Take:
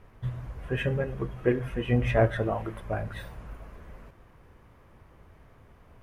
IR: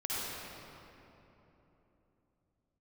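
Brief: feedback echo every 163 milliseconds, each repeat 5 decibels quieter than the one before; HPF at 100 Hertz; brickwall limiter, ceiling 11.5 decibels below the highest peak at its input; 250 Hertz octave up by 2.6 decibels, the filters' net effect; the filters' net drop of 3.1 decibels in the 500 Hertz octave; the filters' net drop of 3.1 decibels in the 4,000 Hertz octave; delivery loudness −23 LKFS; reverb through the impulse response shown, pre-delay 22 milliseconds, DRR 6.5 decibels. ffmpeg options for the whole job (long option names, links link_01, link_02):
-filter_complex "[0:a]highpass=100,equalizer=frequency=250:width_type=o:gain=5,equalizer=frequency=500:width_type=o:gain=-5.5,equalizer=frequency=4000:width_type=o:gain=-4.5,alimiter=limit=-23dB:level=0:latency=1,aecho=1:1:163|326|489|652|815|978|1141:0.562|0.315|0.176|0.0988|0.0553|0.031|0.0173,asplit=2[link_01][link_02];[1:a]atrim=start_sample=2205,adelay=22[link_03];[link_02][link_03]afir=irnorm=-1:irlink=0,volume=-12.5dB[link_04];[link_01][link_04]amix=inputs=2:normalize=0,volume=9dB"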